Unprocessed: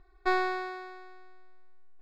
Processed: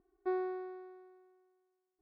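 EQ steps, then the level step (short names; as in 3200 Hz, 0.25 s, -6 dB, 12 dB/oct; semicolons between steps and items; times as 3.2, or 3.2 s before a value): band-pass 310 Hz, Q 1.5; -2.0 dB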